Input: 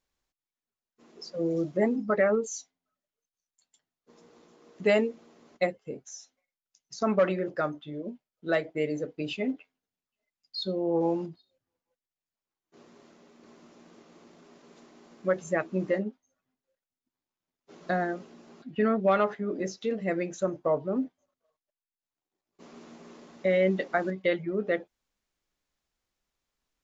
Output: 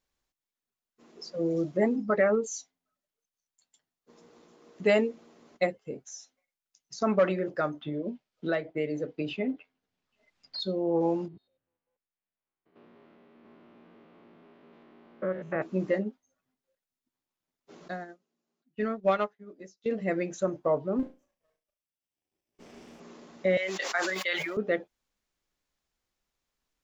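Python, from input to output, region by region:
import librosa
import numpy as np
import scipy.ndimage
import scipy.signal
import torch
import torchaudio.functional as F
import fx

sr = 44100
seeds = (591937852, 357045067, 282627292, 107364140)

y = fx.chain(x, sr, fx.air_absorb(metres=120.0),
    fx.band_squash(depth_pct=70), at=(7.81, 10.6))
y = fx.chain(y, sr, fx.spec_steps(hold_ms=100),
    fx.lowpass(hz=3100.0, slope=24), at=(11.28, 15.62))
y = fx.chain(y, sr, fx.high_shelf(hz=4200.0, db=10.0),
    fx.upward_expand(threshold_db=-41.0, expansion=2.5), at=(17.88, 19.86))
y = fx.chain(y, sr, fx.lower_of_two(delay_ms=0.37),
    fx.room_flutter(wall_m=6.2, rt60_s=0.29), at=(20.99, 23.0))
y = fx.chain(y, sr, fx.highpass(hz=1100.0, slope=12),
    fx.high_shelf(hz=4800.0, db=11.5),
    fx.sustainer(db_per_s=30.0), at=(23.57, 24.57))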